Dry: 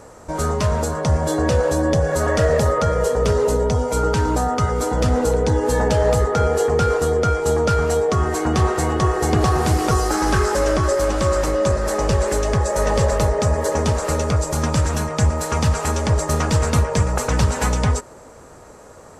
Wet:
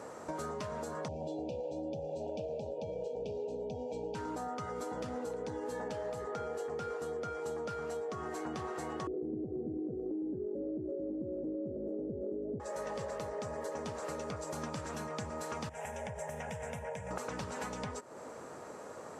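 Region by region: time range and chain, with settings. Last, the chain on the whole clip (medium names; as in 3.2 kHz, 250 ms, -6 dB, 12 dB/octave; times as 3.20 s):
1.08–4.15 s: brick-wall FIR band-stop 930–2300 Hz + distance through air 140 m
9.07–12.60 s: inverse Chebyshev low-pass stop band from 1 kHz + peaking EQ 290 Hz +11 dB 0.94 oct + level flattener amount 50%
15.69–17.11 s: compression 5:1, threshold -20 dBFS + static phaser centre 1.2 kHz, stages 6
whole clip: high-pass 180 Hz 12 dB/octave; treble shelf 5.2 kHz -7 dB; compression, threshold -35 dBFS; trim -3 dB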